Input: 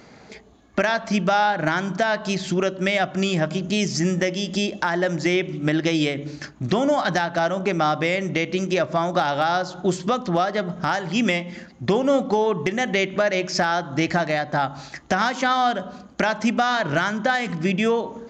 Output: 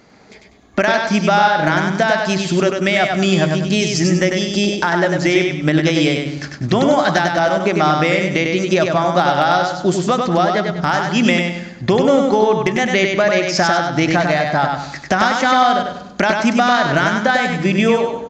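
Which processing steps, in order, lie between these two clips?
AGC gain up to 8 dB; on a send: feedback echo 98 ms, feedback 36%, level -4 dB; on the sum: gain -2 dB

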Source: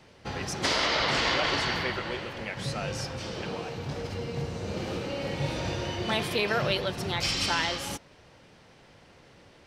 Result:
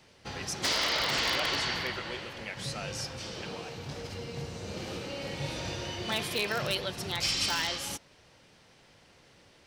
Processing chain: in parallel at -9 dB: wrapped overs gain 16.5 dB; on the sum: high shelf 2700 Hz +8 dB; gain -8.5 dB

